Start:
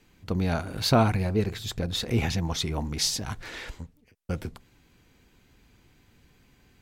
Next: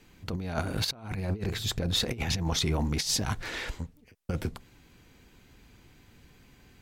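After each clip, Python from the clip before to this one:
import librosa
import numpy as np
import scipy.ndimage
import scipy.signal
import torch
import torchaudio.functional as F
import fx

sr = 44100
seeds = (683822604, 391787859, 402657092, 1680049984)

y = fx.over_compress(x, sr, threshold_db=-29.0, ratio=-0.5)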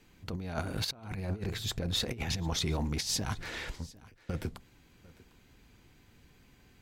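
y = x + 10.0 ** (-21.5 / 20.0) * np.pad(x, (int(750 * sr / 1000.0), 0))[:len(x)]
y = F.gain(torch.from_numpy(y), -4.0).numpy()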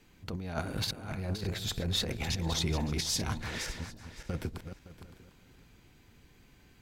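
y = fx.reverse_delay_fb(x, sr, ms=282, feedback_pct=41, wet_db=-8.5)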